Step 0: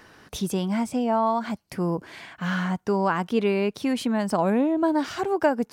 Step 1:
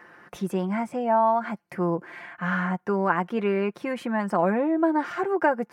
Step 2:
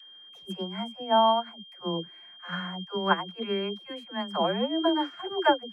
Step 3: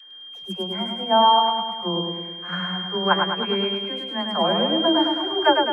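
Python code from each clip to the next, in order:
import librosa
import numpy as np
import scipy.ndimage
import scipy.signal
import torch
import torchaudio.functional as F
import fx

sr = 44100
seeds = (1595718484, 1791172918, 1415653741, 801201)

y1 = fx.highpass(x, sr, hz=270.0, slope=6)
y1 = fx.high_shelf_res(y1, sr, hz=2700.0, db=-11.5, q=1.5)
y1 = y1 + 0.51 * np.pad(y1, (int(5.7 * sr / 1000.0), 0))[:len(y1)]
y2 = y1 + 10.0 ** (-29.0 / 20.0) * np.sin(2.0 * np.pi * 3200.0 * np.arange(len(y1)) / sr)
y2 = fx.dispersion(y2, sr, late='lows', ms=102.0, hz=370.0)
y2 = fx.upward_expand(y2, sr, threshold_db=-31.0, expansion=2.5)
y2 = y2 * librosa.db_to_amplitude(1.5)
y3 = fx.echo_feedback(y2, sr, ms=105, feedback_pct=58, wet_db=-4)
y3 = y3 * librosa.db_to_amplitude(4.0)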